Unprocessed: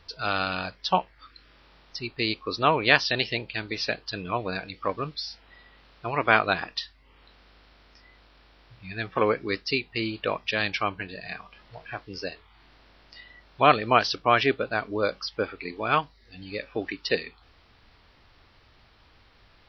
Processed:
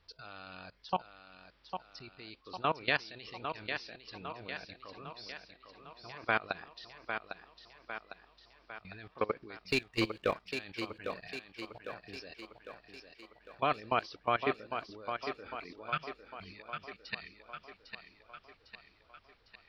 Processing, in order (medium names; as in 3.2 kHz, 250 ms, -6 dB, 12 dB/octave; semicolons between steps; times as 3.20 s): 9.68–10.49 s: waveshaping leveller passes 2; level held to a coarse grid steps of 21 dB; 15.89–17.41 s: time-frequency box 230–1200 Hz -22 dB; thinning echo 803 ms, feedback 57%, high-pass 150 Hz, level -7 dB; trim -7 dB